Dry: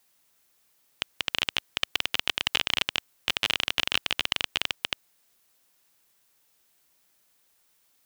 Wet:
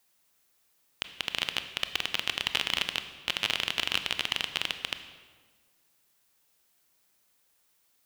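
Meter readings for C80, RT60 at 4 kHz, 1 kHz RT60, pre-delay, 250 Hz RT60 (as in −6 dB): 12.0 dB, 1.1 s, 1.4 s, 21 ms, 1.8 s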